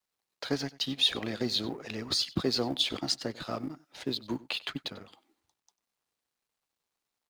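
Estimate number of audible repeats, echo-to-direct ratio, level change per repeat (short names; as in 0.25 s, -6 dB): 1, -20.0 dB, no steady repeat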